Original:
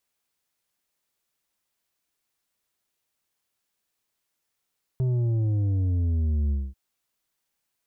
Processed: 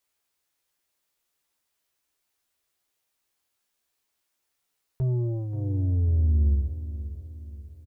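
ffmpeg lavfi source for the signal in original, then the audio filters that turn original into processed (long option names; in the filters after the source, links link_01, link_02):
-f lavfi -i "aevalsrc='0.0794*clip((1.74-t)/0.23,0,1)*tanh(2.24*sin(2*PI*130*1.74/log(65/130)*(exp(log(65/130)*t/1.74)-1)))/tanh(2.24)':duration=1.74:sample_rate=44100"
-filter_complex "[0:a]equalizer=frequency=180:width_type=o:width=0.49:gain=-9,asplit=2[link_01][link_02];[link_02]adelay=14,volume=-5dB[link_03];[link_01][link_03]amix=inputs=2:normalize=0,aecho=1:1:533|1066|1599|2132|2665:0.224|0.103|0.0474|0.0218|0.01"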